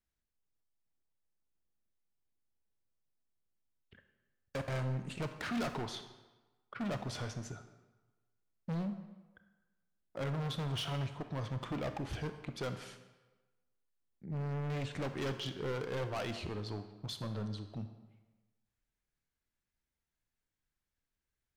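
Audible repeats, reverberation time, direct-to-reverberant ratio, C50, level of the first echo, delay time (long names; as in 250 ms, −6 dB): no echo audible, 1.2 s, 8.0 dB, 9.5 dB, no echo audible, no echo audible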